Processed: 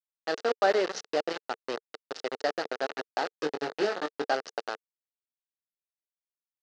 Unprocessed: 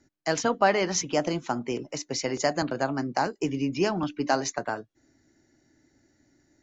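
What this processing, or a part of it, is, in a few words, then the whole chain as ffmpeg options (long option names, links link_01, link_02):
hand-held game console: -filter_complex "[0:a]asettb=1/sr,asplit=3[link_01][link_02][link_03];[link_01]atrim=end=0.574[link_04];[link_02]atrim=start=0.57:end=1.11,asetpts=PTS-STARTPTS,afade=type=in:duration=0.004:curve=qsin,afade=type=out:start_time=0.536:duration=0.004:curve=qsin,adynamicequalizer=threshold=0.02:dfrequency=360:dqfactor=1.1:tfrequency=360:tqfactor=1.1:attack=5:release=100:ratio=0.375:range=2:mode=boostabove:tftype=bell[link_05];[link_03]atrim=start=1.106[link_06];[link_04][link_05]acrossfade=duration=0.004:curve1=hsin:curve2=qsin[link_07];[link_07][link_06]acrossfade=duration=0.004:curve1=qsin:curve2=hsin,acrusher=bits=3:mix=0:aa=0.000001,highpass=440,equalizer=frequency=450:width_type=q:width=4:gain=6,equalizer=frequency=1000:width_type=q:width=4:gain=-9,equalizer=frequency=2300:width_type=q:width=4:gain=-9,equalizer=frequency=3300:width_type=q:width=4:gain=-7,lowpass=frequency=4500:width=0.5412,lowpass=frequency=4500:width=1.3066,asettb=1/sr,asplit=3[link_08][link_09][link_10];[link_08]atrim=end=3.294[link_11];[link_09]atrim=start=3.29:end=4.34,asetpts=PTS-STARTPTS,afade=type=in:duration=0.004:curve=qsin,afade=type=out:start_time=1.046:duration=0.004:curve=qsin,asplit=2[link_12][link_13];[link_13]adelay=20,volume=-7dB[link_14];[link_12][link_14]amix=inputs=2:normalize=0,atrim=end_sample=46305[link_15];[link_10]atrim=start=4.336[link_16];[link_11][link_15]acrossfade=duration=0.004:curve1=hsin:curve2=qsin[link_17];[link_17][link_16]acrossfade=duration=0.004:curve1=qsin:curve2=hsin,volume=-2dB"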